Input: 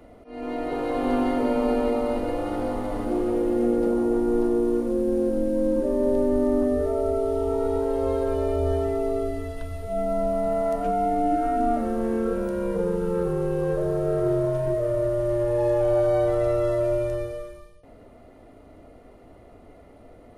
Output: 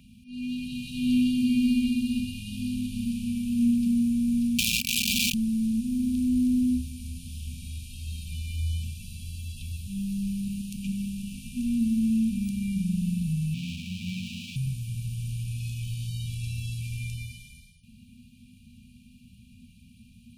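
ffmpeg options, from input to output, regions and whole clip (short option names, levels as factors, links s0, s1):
-filter_complex "[0:a]asettb=1/sr,asplit=3[s0][s1][s2];[s0]atrim=end=4.584[s3];[s1]atrim=start=4.58:end=5.34,asetpts=PTS-STARTPTS,afade=t=in:d=0.004:c=qsin,afade=t=out:st=0.756:d=0.004:c=qsin,aeval=exprs='(mod(8.41*val(0)+1,2)-1)/8.41':c=same,aeval=exprs='val(0)*sin(2*PI*900*n/s)':c=same,aecho=1:1:3.3:0.54,atrim=end_sample=33516[s4];[s2]atrim=start=5.336[s5];[s3][s4]acrossfade=d=0.004:c1=hsin:c2=qsin[s6];[s6][s5]acrossfade=d=0.004:c1=qsin:c2=hsin,asettb=1/sr,asplit=3[s7][s8][s9];[s7]atrim=end=13.544[s10];[s8]atrim=start=13.54:end=14.56,asetpts=PTS-STARTPTS,afade=t=in:d=0.004:c=qsin,afade=t=out:st=1.016:d=0.004:c=qsin,bass=f=250:g=-14,treble=f=4000:g=-12,aeval=exprs='abs(val(0))':c=same,highpass=92[s11];[s9]atrim=start=14.556[s12];[s10][s11]acrossfade=d=0.004:c1=hsin:c2=qsin[s13];[s13][s12]acrossfade=d=0.004:c1=qsin:c2=hsin,afftfilt=real='re*(1-between(b*sr/4096,250,2300))':imag='im*(1-between(b*sr/4096,250,2300))':win_size=4096:overlap=0.75,highpass=f=160:p=1,volume=2.24"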